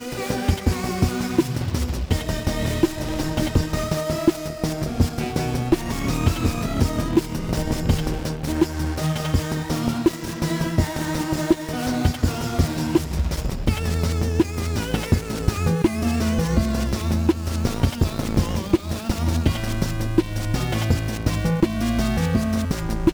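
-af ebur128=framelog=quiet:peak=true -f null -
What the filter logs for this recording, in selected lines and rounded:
Integrated loudness:
  I:         -23.3 LUFS
  Threshold: -33.3 LUFS
Loudness range:
  LRA:         1.3 LU
  Threshold: -43.3 LUFS
  LRA low:   -23.8 LUFS
  LRA high:  -22.5 LUFS
True peak:
  Peak:       -5.9 dBFS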